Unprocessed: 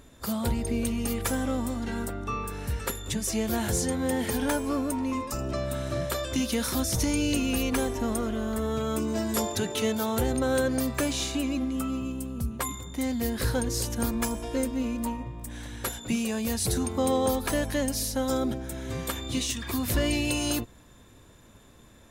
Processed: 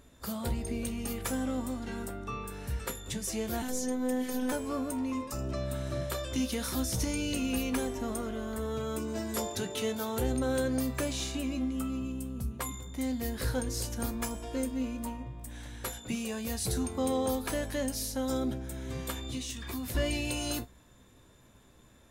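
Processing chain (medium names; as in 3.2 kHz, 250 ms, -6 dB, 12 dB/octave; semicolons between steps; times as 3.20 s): 3.62–4.52 s: robot voice 253 Hz; 19.27–19.95 s: compression 4:1, threshold -30 dBFS, peak gain reduction 6 dB; feedback comb 64 Hz, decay 0.18 s, harmonics all, mix 70%; trim -1.5 dB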